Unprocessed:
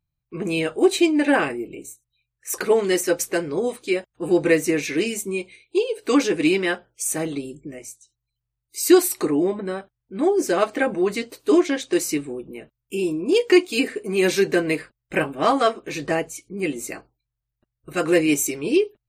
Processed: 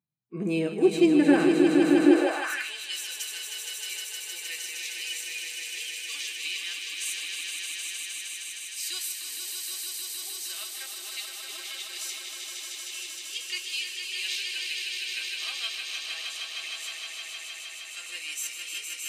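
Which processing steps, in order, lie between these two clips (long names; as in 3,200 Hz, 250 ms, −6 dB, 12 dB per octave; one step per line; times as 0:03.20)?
echo that builds up and dies away 155 ms, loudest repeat 5, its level −6 dB
harmonic and percussive parts rebalanced percussive −10 dB
high-pass filter sweep 200 Hz → 3,300 Hz, 0:02.01–0:02.73
level −5 dB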